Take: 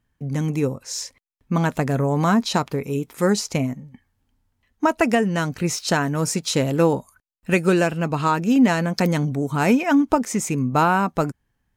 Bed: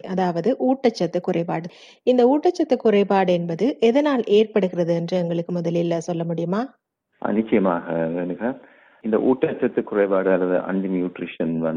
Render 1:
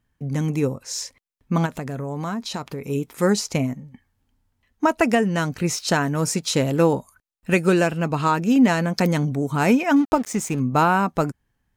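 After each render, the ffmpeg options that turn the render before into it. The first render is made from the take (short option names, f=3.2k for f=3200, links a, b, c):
-filter_complex "[0:a]asplit=3[a][b][c];[a]afade=t=out:st=1.65:d=0.02[d];[b]acompressor=threshold=-29dB:ratio=2.5:attack=3.2:release=140:knee=1:detection=peak,afade=t=in:st=1.65:d=0.02,afade=t=out:st=2.88:d=0.02[e];[c]afade=t=in:st=2.88:d=0.02[f];[d][e][f]amix=inputs=3:normalize=0,asettb=1/sr,asplit=3[g][h][i];[g]atrim=end=9.964[j];[h]atrim=start=9.96:end=10.6,asetpts=PTS-STARTPTS,afade=t=in:d=0.004:c=qsin,afade=t=out:st=0.636:d=0.004:c=qsin,aeval=exprs='sgn(val(0))*max(abs(val(0))-0.0126,0)':c=same[k];[i]atrim=start=10.596[l];[j][k]acrossfade=d=0.004:c1=hsin:c2=qsin[m];[m][l]acrossfade=d=0.004:c1=qsin:c2=hsin"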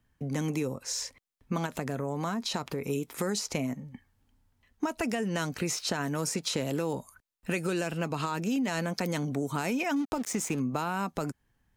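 -filter_complex "[0:a]alimiter=limit=-15.5dB:level=0:latency=1:release=71,acrossover=split=230|2900[a][b][c];[a]acompressor=threshold=-39dB:ratio=4[d];[b]acompressor=threshold=-30dB:ratio=4[e];[c]acompressor=threshold=-32dB:ratio=4[f];[d][e][f]amix=inputs=3:normalize=0"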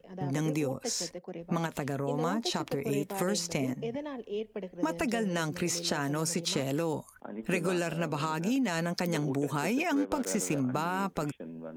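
-filter_complex "[1:a]volume=-19.5dB[a];[0:a][a]amix=inputs=2:normalize=0"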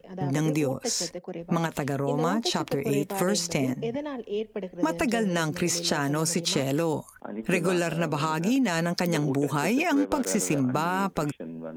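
-af "volume=5dB"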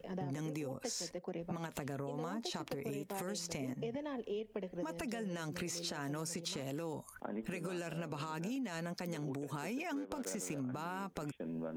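-af "alimiter=limit=-22.5dB:level=0:latency=1:release=419,acompressor=threshold=-38dB:ratio=5"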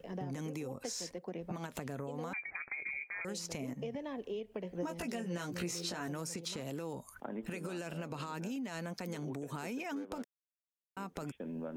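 -filter_complex "[0:a]asettb=1/sr,asplit=3[a][b][c];[a]atrim=end=2.334[d];[b]atrim=start=2.33:end=3.25,asetpts=PTS-STARTPTS,afade=t=in:d=0.004:c=qsin,afade=t=out:st=0.916:d=0.004:c=qsin,lowpass=f=2.2k:t=q:w=0.5098,lowpass=f=2.2k:t=q:w=0.6013,lowpass=f=2.2k:t=q:w=0.9,lowpass=f=2.2k:t=q:w=2.563,afreqshift=-2600[e];[c]atrim=start=3.246[f];[d][e]acrossfade=d=0.004:c1=hsin:c2=qsin[g];[g][f]acrossfade=d=0.004:c1=qsin:c2=hsin,asettb=1/sr,asplit=3[h][i][j];[h]atrim=end=4.634[k];[i]atrim=start=4.63:end=6.08,asetpts=PTS-STARTPTS,afade=t=in:d=0.004:c=qsin,afade=t=out:st=1.446:d=0.004:c=qsin,asplit=2[l][m];[m]adelay=17,volume=-4dB[n];[l][n]amix=inputs=2:normalize=0,atrim=end_sample=63945[o];[j]atrim=start=6.076[p];[k][o]acrossfade=d=0.004:c1=hsin:c2=qsin[q];[q][p]acrossfade=d=0.004:c1=qsin:c2=hsin,asettb=1/sr,asplit=3[r][s][t];[r]atrim=end=10.244[u];[s]atrim=start=10.24:end=10.97,asetpts=PTS-STARTPTS,afade=t=in:d=0.004:c=qsin,afade=t=out:st=0.726:d=0.004:c=qsin,acrusher=bits=2:mix=0:aa=0.5[v];[t]atrim=start=10.966[w];[u][v]acrossfade=d=0.004:c1=hsin:c2=qsin[x];[x][w]acrossfade=d=0.004:c1=qsin:c2=hsin"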